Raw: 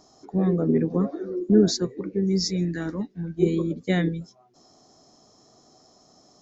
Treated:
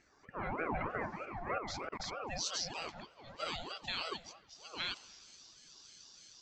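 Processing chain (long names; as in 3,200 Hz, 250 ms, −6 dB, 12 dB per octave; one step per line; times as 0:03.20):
delay that plays each chunk backwards 630 ms, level −3 dB
automatic gain control gain up to 6.5 dB
band-pass filter sweep 1,600 Hz → 3,600 Hz, 0:02.07–0:02.71
brickwall limiter −30 dBFS, peak gain reduction 9.5 dB
spring reverb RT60 1.6 s, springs 45/51 ms, chirp 60 ms, DRR 17 dB
0:01.58–0:02.32: output level in coarse steps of 22 dB
ring modulator whose carrier an LFO sweeps 660 Hz, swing 50%, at 3.2 Hz
level +5 dB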